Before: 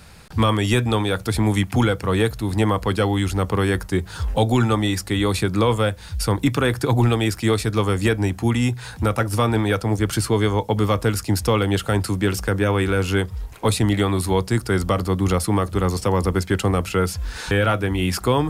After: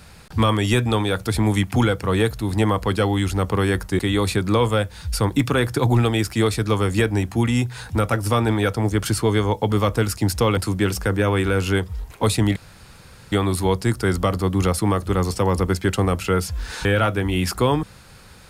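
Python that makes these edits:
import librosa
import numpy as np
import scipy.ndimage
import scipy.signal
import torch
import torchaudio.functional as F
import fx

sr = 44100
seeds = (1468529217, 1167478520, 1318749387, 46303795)

y = fx.edit(x, sr, fx.cut(start_s=3.99, length_s=1.07),
    fx.cut(start_s=11.64, length_s=0.35),
    fx.insert_room_tone(at_s=13.98, length_s=0.76), tone=tone)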